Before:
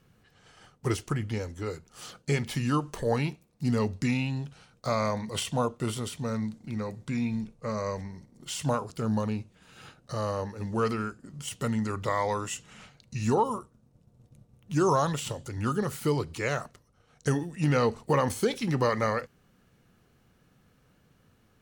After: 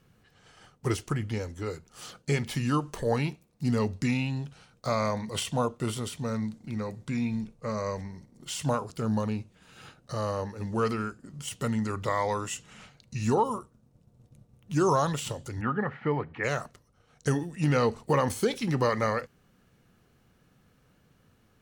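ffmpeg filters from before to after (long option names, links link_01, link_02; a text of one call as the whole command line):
ffmpeg -i in.wav -filter_complex "[0:a]asplit=3[link_01][link_02][link_03];[link_01]afade=type=out:start_time=15.6:duration=0.02[link_04];[link_02]highpass=130,equalizer=frequency=360:width_type=q:width=4:gain=-6,equalizer=frequency=790:width_type=q:width=4:gain=6,equalizer=frequency=1800:width_type=q:width=4:gain=9,lowpass=frequency=2400:width=0.5412,lowpass=frequency=2400:width=1.3066,afade=type=in:start_time=15.6:duration=0.02,afade=type=out:start_time=16.43:duration=0.02[link_05];[link_03]afade=type=in:start_time=16.43:duration=0.02[link_06];[link_04][link_05][link_06]amix=inputs=3:normalize=0" out.wav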